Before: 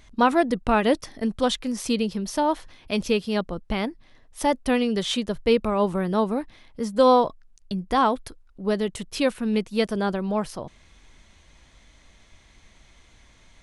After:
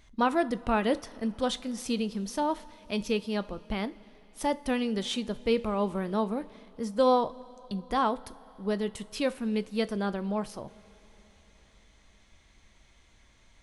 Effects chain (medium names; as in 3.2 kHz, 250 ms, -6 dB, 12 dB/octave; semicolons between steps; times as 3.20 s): two-slope reverb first 0.32 s, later 4.3 s, from -18 dB, DRR 13 dB; trim -6.5 dB